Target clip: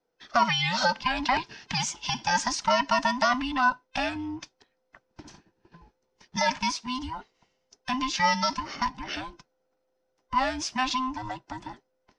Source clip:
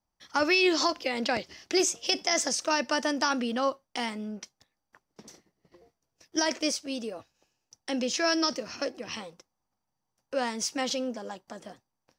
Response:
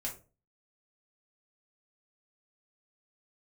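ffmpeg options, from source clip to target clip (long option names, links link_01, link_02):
-filter_complex "[0:a]afftfilt=real='real(if(between(b,1,1008),(2*floor((b-1)/24)+1)*24-b,b),0)':imag='imag(if(between(b,1,1008),(2*floor((b-1)/24)+1)*24-b,b),0)*if(between(b,1,1008),-1,1)':win_size=2048:overlap=0.75,lowpass=4300,acrossover=split=330|1400[link_01][link_02][link_03];[link_01]acompressor=threshold=-42dB:ratio=6[link_04];[link_03]alimiter=level_in=1dB:limit=-24dB:level=0:latency=1:release=21,volume=-1dB[link_05];[link_04][link_02][link_05]amix=inputs=3:normalize=0,volume=5dB"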